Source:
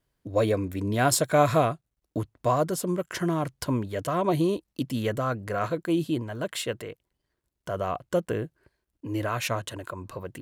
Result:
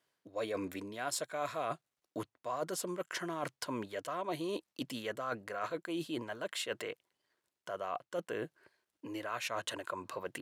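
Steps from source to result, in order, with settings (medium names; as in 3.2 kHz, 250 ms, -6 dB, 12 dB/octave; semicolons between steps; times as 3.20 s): frequency weighting A; reverse; compression 6:1, threshold -37 dBFS, peak gain reduction 18.5 dB; reverse; trim +2 dB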